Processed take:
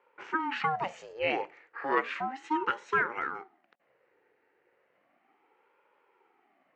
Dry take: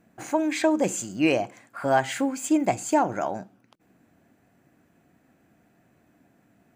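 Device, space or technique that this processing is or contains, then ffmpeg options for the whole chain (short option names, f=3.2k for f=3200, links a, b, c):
voice changer toy: -af "aeval=exprs='val(0)*sin(2*PI*450*n/s+450*0.6/0.34*sin(2*PI*0.34*n/s))':c=same,highpass=430,equalizer=f=620:t=q:w=4:g=-6,equalizer=f=1k:t=q:w=4:g=-5,equalizer=f=1.9k:t=q:w=4:g=3,equalizer=f=3.5k:t=q:w=4:g=-7,lowpass=f=3.6k:w=0.5412,lowpass=f=3.6k:w=1.3066"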